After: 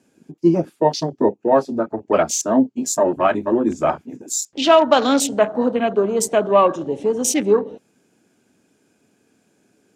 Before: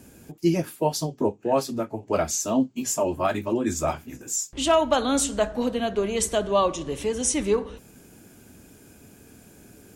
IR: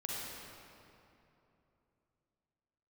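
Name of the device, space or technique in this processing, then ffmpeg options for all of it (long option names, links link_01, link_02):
over-cleaned archive recording: -af "highpass=190,lowpass=7400,afwtdn=0.0178,volume=7.5dB"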